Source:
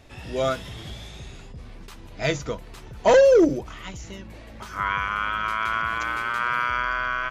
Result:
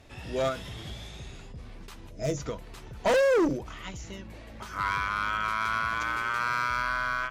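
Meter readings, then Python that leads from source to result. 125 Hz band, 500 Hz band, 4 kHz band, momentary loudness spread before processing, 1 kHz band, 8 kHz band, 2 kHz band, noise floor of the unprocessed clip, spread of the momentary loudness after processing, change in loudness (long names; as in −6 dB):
−3.0 dB, −7.5 dB, −4.0 dB, 23 LU, −3.5 dB, can't be measured, −3.5 dB, −43 dBFS, 21 LU, −5.5 dB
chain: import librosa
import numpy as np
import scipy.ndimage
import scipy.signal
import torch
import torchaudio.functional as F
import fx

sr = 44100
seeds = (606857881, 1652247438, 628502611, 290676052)

y = fx.clip_asym(x, sr, top_db=-20.5, bottom_db=-16.0)
y = fx.spec_box(y, sr, start_s=2.11, length_s=0.27, low_hz=680.0, high_hz=5000.0, gain_db=-13)
y = fx.end_taper(y, sr, db_per_s=140.0)
y = F.gain(torch.from_numpy(y), -2.5).numpy()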